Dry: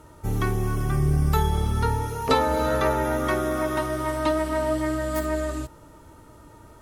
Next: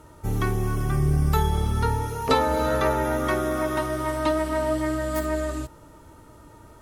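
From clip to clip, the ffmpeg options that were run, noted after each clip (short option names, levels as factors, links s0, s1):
-af anull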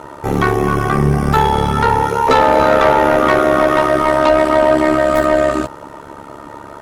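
-filter_complex "[0:a]tremolo=f=70:d=0.889,asplit=2[s0][s1];[s1]highpass=f=720:p=1,volume=17.8,asoftclip=type=tanh:threshold=0.422[s2];[s0][s2]amix=inputs=2:normalize=0,lowpass=f=1300:p=1,volume=0.501,volume=2.37"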